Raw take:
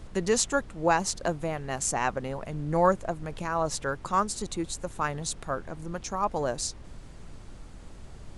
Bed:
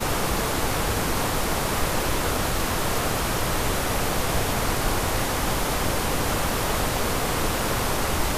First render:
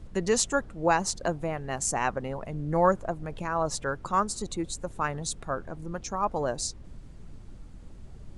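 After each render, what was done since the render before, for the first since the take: noise reduction 8 dB, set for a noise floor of -46 dBFS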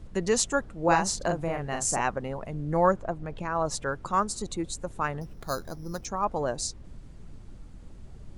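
0.84–2.01 s: doubling 42 ms -4 dB; 2.92–3.55 s: distance through air 60 m; 5.21–6.05 s: careless resampling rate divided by 8×, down filtered, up hold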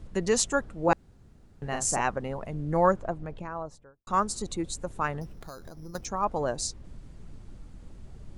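0.93–1.62 s: room tone; 3.01–4.07 s: studio fade out; 5.29–5.95 s: compression 12:1, threshold -38 dBFS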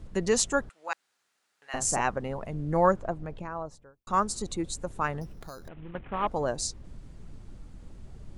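0.69–1.74 s: high-pass 1.5 kHz; 5.68–6.27 s: CVSD coder 16 kbps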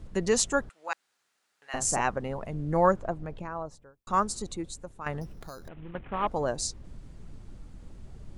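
4.21–5.06 s: fade out, to -12.5 dB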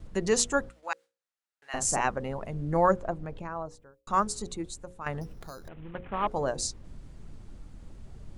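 gate with hold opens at -49 dBFS; hum notches 60/120/180/240/300/360/420/480/540 Hz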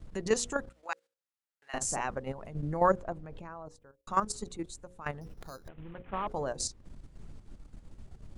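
level held to a coarse grid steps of 11 dB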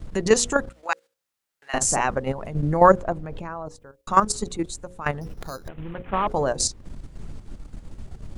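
trim +11 dB; peak limiter -3 dBFS, peak gain reduction 1.5 dB

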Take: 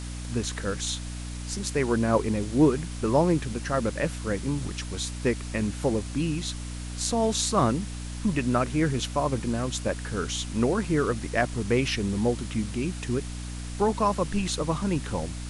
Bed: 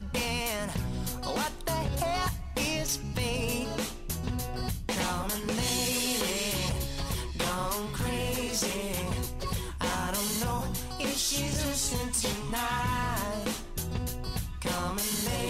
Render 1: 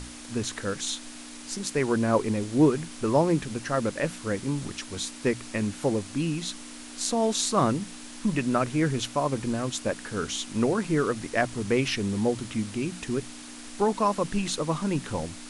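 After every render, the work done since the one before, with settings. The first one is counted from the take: hum notches 60/120/180 Hz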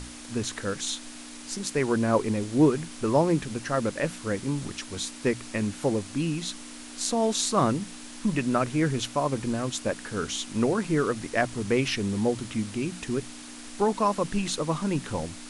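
no audible change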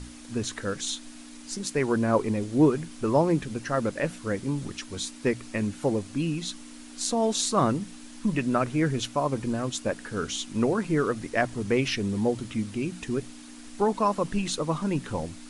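noise reduction 6 dB, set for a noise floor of -43 dBFS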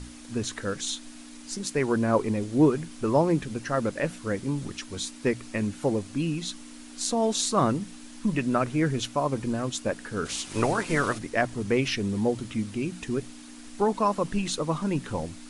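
10.25–11.17 s: spectral peaks clipped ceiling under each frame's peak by 17 dB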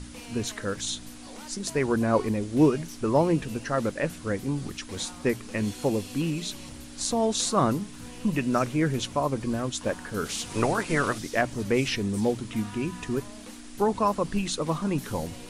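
add bed -14.5 dB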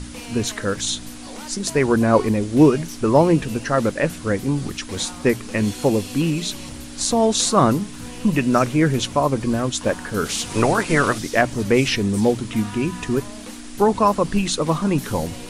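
trim +7.5 dB; peak limiter -3 dBFS, peak gain reduction 1.5 dB

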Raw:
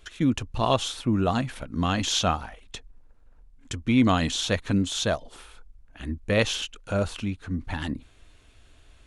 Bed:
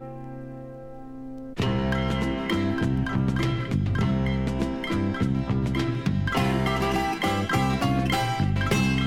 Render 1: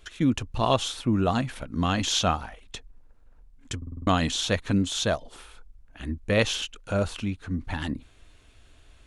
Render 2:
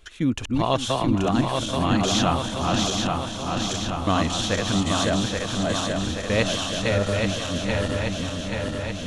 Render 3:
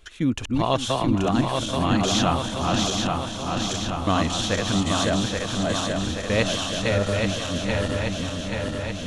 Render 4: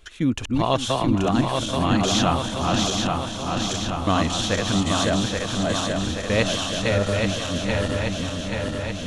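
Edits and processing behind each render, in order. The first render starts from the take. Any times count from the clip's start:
3.77 s: stutter in place 0.05 s, 6 plays
backward echo that repeats 415 ms, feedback 81%, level -2.5 dB; multi-head delay 266 ms, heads second and third, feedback 48%, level -13 dB
no audible change
trim +1 dB

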